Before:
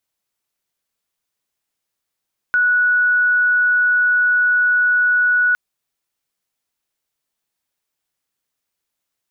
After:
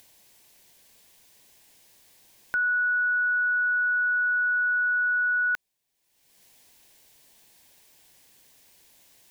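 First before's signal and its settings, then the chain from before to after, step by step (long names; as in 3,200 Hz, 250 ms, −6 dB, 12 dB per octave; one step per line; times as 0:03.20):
tone sine 1,470 Hz −12 dBFS 3.01 s
brickwall limiter −15.5 dBFS
upward compression, threshold −39 dBFS
parametric band 1,300 Hz −13 dB 0.3 octaves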